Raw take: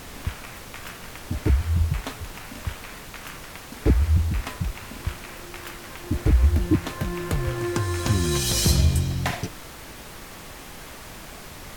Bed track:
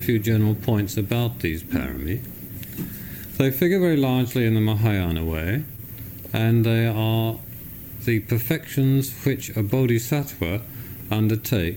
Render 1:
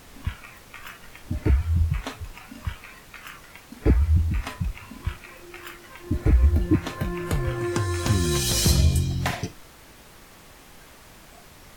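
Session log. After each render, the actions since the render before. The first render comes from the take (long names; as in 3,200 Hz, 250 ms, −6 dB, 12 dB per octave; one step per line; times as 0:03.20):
noise reduction from a noise print 8 dB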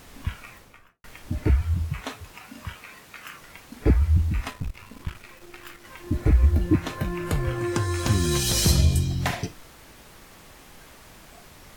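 0:00.47–0:01.04: fade out and dull
0:01.74–0:03.42: high-pass filter 140 Hz 6 dB per octave
0:04.50–0:05.85: gain on one half-wave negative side −12 dB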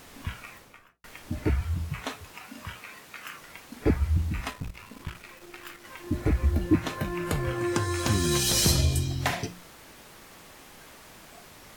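low-shelf EQ 94 Hz −9 dB
hum removal 59.25 Hz, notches 3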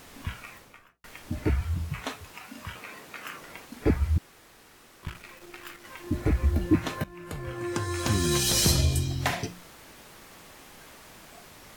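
0:02.75–0:03.65: parametric band 390 Hz +6 dB 2.6 octaves
0:04.18–0:05.03: fill with room tone
0:07.04–0:08.21: fade in, from −16.5 dB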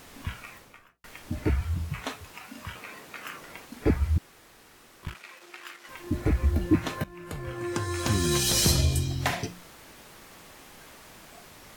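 0:05.14–0:05.89: meter weighting curve A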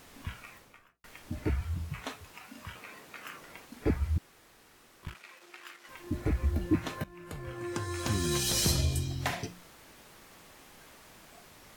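level −5 dB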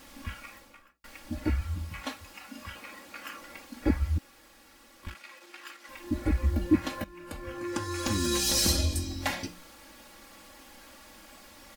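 parametric band 4,700 Hz +3 dB 0.23 octaves
comb filter 3.6 ms, depth 94%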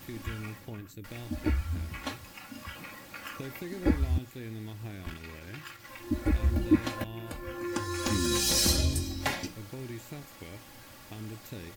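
mix in bed track −21 dB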